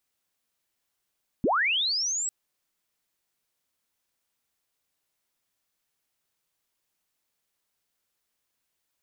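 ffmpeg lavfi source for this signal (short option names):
-f lavfi -i "aevalsrc='pow(10,(-20-7*t/0.85)/20)*sin(2*PI*(170*t+7730*t*t/(2*0.85)))':d=0.85:s=44100"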